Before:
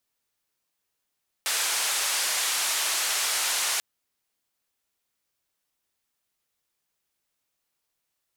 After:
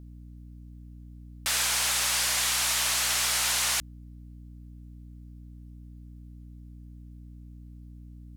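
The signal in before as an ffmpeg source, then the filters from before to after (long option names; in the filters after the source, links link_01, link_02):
-f lavfi -i "anoisesrc=color=white:duration=2.34:sample_rate=44100:seed=1,highpass=frequency=760,lowpass=frequency=9900,volume=-17.9dB"
-af "equalizer=frequency=250:width=1.3:gain=-7.5,aeval=exprs='val(0)+0.00631*(sin(2*PI*60*n/s)+sin(2*PI*2*60*n/s)/2+sin(2*PI*3*60*n/s)/3+sin(2*PI*4*60*n/s)/4+sin(2*PI*5*60*n/s)/5)':channel_layout=same"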